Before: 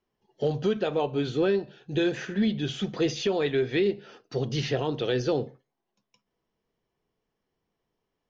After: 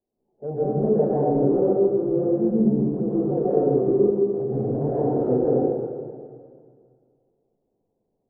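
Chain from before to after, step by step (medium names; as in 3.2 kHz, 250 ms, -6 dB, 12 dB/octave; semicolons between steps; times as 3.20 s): steep low-pass 740 Hz 36 dB/octave; bass shelf 160 Hz -7.5 dB; hum notches 60/120/180/240/300/360/420/480 Hz; transient shaper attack -8 dB, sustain +3 dB; reverberation RT60 2.1 s, pre-delay 113 ms, DRR -9 dB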